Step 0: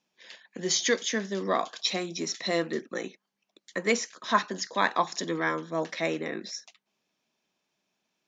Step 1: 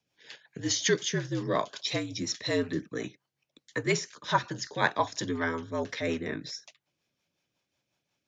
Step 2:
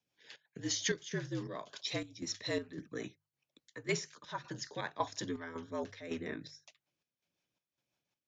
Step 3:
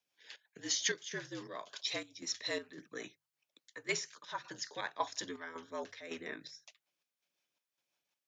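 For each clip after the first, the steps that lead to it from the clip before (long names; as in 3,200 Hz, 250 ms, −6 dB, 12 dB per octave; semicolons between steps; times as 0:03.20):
frequency shifter −63 Hz; rotating-speaker cabinet horn 5.5 Hz; level +1 dB
square-wave tremolo 1.8 Hz, depth 65%, duty 65%; mains-hum notches 50/100/150 Hz; level −6.5 dB
high-pass filter 720 Hz 6 dB per octave; level +2 dB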